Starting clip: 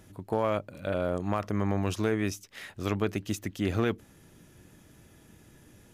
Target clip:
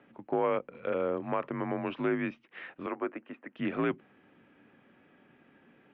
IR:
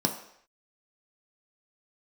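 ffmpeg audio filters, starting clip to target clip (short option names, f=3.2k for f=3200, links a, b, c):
-filter_complex "[0:a]highpass=f=280:t=q:w=0.5412,highpass=f=280:t=q:w=1.307,lowpass=f=2.9k:t=q:w=0.5176,lowpass=f=2.9k:t=q:w=0.7071,lowpass=f=2.9k:t=q:w=1.932,afreqshift=-69,asettb=1/sr,asplit=3[a][b][c];[a]atrim=end=2.864[d];[b]atrim=start=2.86:end=3.56,asetpts=PTS-STARTPTS,afade=t=in:d=0.004:c=qsin,afade=t=out:st=0.696:d=0.004:c=qsin,acrossover=split=290 2100:gain=0.0708 1 0.0794[e][f][g];[e][f][g]amix=inputs=3:normalize=0[h];[c]atrim=start=3.556[i];[d][h]acrossfade=d=0.004:c1=hsin:c2=qsin[j];[j][i]acrossfade=d=0.004:c1=qsin:c2=hsin"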